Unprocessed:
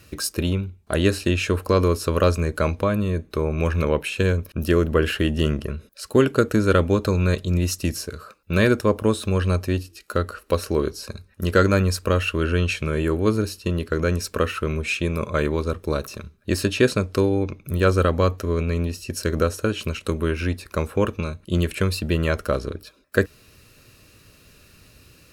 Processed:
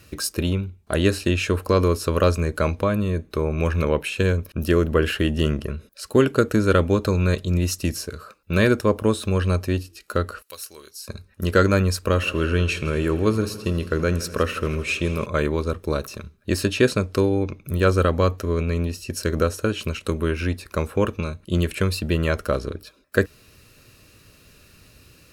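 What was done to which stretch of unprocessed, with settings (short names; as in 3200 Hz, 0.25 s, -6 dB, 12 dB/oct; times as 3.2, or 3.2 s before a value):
10.42–11.08 pre-emphasis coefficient 0.97
11.97–15.26 multi-head echo 81 ms, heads first and second, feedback 66%, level -19.5 dB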